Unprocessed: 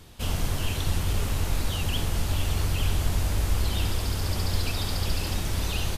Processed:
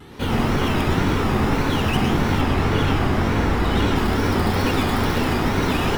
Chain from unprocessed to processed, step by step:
stylus tracing distortion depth 0.16 ms
low-shelf EQ 230 Hz +3 dB
convolution reverb RT60 0.35 s, pre-delay 98 ms, DRR −0.5 dB
tape wow and flutter 130 cents
high-shelf EQ 8,400 Hz −5 dB, from 0:02.41 −10.5 dB, from 0:03.96 −3 dB
level +1.5 dB

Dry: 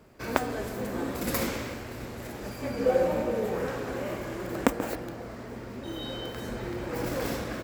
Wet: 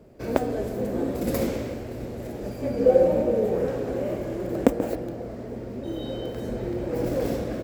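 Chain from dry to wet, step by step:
low shelf with overshoot 790 Hz +8.5 dB, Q 1.5
level −4 dB

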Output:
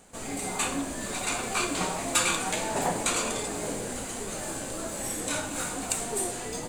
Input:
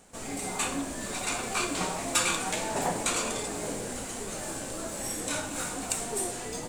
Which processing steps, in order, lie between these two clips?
notch filter 5,500 Hz, Q 13
level +1.5 dB

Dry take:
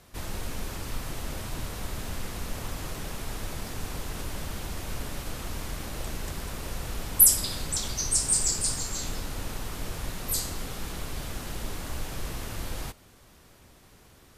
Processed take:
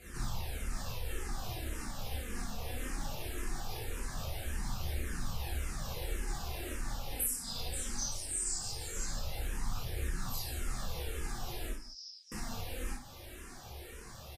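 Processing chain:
0:11.70–0:12.32: flat-topped band-pass 5,200 Hz, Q 8
downward compressor 5 to 1, threshold −43 dBFS, peak gain reduction 26.5 dB
reverb whose tail is shaped and stops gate 90 ms flat, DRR −7.5 dB
flanger 0.2 Hz, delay 0.4 ms, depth 4 ms, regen +38%
multi-tap delay 57/164 ms −8.5/−14.5 dB
frequency shifter mixed with the dry sound −1.8 Hz
level +4.5 dB

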